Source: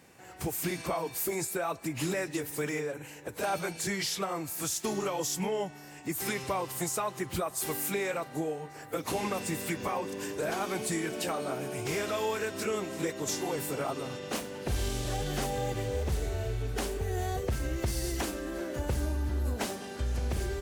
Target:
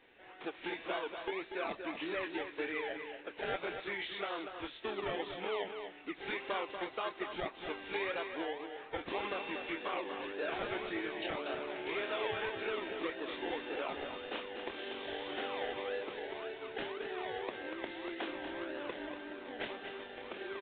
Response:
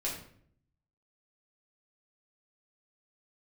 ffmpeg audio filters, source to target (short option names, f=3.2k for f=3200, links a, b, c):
-filter_complex "[0:a]highpass=f=300:w=0.5412,highpass=f=300:w=1.3066,acrossover=split=1200[a][b];[a]acrusher=samples=28:mix=1:aa=0.000001:lfo=1:lforange=16.8:lforate=1.8[c];[b]asplit=2[d][e];[e]adelay=26,volume=-2.5dB[f];[d][f]amix=inputs=2:normalize=0[g];[c][g]amix=inputs=2:normalize=0,aecho=1:1:239:0.422,volume=-4.5dB" -ar 8000 -c:a pcm_alaw